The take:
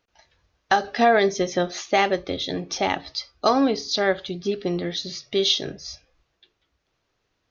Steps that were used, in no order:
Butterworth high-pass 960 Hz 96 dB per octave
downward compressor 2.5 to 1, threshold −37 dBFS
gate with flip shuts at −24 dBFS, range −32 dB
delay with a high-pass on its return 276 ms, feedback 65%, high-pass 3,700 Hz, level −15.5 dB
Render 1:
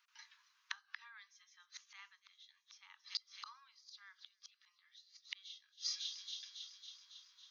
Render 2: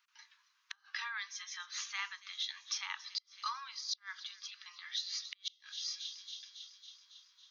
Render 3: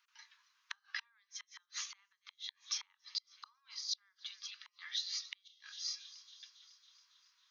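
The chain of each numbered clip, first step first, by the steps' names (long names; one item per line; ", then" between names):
delay with a high-pass on its return, then gate with flip, then Butterworth high-pass, then downward compressor
delay with a high-pass on its return, then downward compressor, then Butterworth high-pass, then gate with flip
downward compressor, then delay with a high-pass on its return, then gate with flip, then Butterworth high-pass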